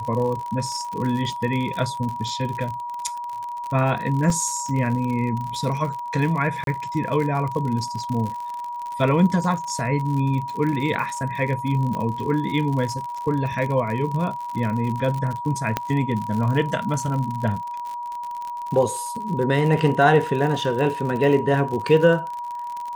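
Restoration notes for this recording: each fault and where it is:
crackle 65/s -28 dBFS
tone 960 Hz -28 dBFS
4.3 gap 2.2 ms
6.64–6.67 gap 32 ms
11.95 pop -17 dBFS
15.77 pop -7 dBFS

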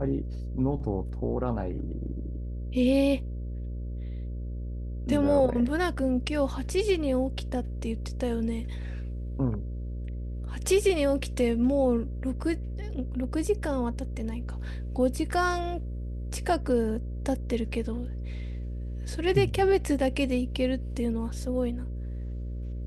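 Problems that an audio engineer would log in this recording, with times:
buzz 60 Hz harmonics 10 -34 dBFS

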